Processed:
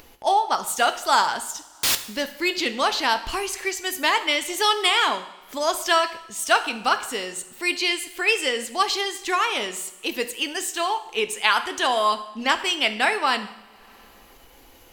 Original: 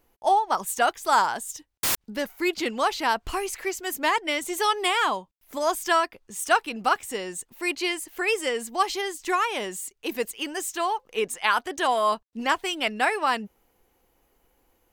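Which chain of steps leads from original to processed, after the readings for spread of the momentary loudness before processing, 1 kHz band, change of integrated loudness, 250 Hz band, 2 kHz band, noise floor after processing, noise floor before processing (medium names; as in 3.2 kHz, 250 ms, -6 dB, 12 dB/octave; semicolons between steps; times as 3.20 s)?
8 LU, +1.5 dB, +3.0 dB, 0.0 dB, +4.0 dB, -51 dBFS, -71 dBFS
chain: two-slope reverb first 0.73 s, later 2.1 s, from -18 dB, DRR 9 dB; upward compressor, threshold -38 dBFS; peaking EQ 3.9 kHz +8 dB 1.7 oct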